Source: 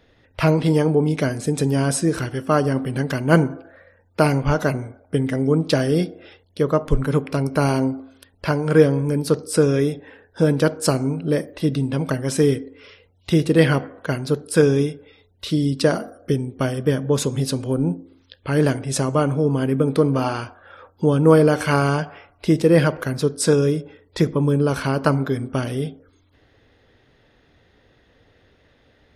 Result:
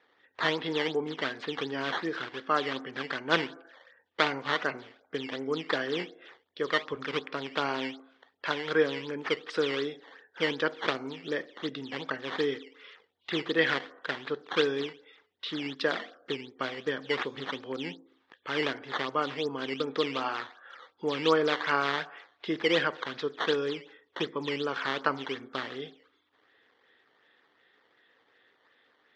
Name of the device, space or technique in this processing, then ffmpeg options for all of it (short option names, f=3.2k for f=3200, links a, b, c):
circuit-bent sampling toy: -af "acrusher=samples=10:mix=1:aa=0.000001:lfo=1:lforange=16:lforate=2.7,highpass=420,equalizer=f=610:t=q:w=4:g=-6,equalizer=f=1.2k:t=q:w=4:g=4,equalizer=f=1.8k:t=q:w=4:g=8,equalizer=f=3.4k:t=q:w=4:g=7,lowpass=f=4.5k:w=0.5412,lowpass=f=4.5k:w=1.3066,volume=-7.5dB"